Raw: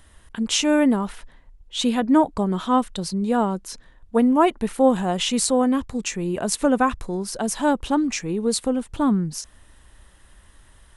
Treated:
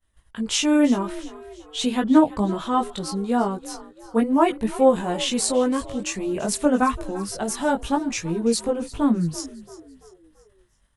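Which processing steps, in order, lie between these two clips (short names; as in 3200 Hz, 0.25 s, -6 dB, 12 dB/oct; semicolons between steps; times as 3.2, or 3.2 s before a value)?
expander -39 dBFS; chorus voices 2, 0.23 Hz, delay 19 ms, depth 1.6 ms; on a send: frequency-shifting echo 0.338 s, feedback 45%, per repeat +50 Hz, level -17.5 dB; on the sum: gain +2 dB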